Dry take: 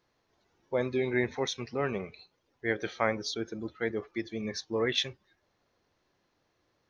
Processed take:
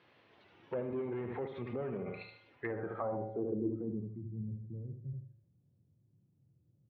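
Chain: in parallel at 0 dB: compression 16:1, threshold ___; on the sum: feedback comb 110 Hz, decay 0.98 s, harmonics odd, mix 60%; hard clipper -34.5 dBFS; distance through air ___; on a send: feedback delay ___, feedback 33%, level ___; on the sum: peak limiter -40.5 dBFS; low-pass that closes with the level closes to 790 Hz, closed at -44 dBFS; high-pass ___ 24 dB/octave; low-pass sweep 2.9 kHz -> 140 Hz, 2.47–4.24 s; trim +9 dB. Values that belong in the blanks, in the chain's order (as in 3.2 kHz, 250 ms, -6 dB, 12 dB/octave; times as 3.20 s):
-41 dBFS, 88 m, 74 ms, -8 dB, 87 Hz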